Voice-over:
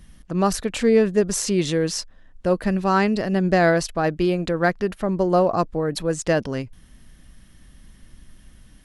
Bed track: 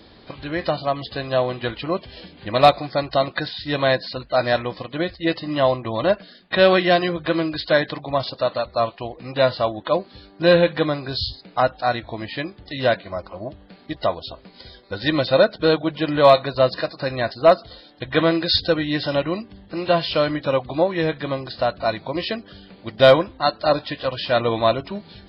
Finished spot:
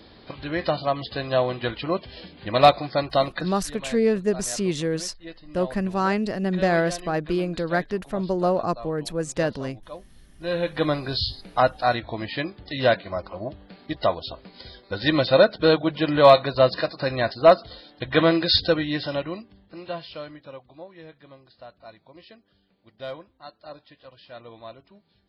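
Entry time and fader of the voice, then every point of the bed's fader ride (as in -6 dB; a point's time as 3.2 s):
3.10 s, -4.0 dB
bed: 3.26 s -1.5 dB
3.71 s -19 dB
10.32 s -19 dB
10.89 s -0.5 dB
18.63 s -0.5 dB
20.77 s -23 dB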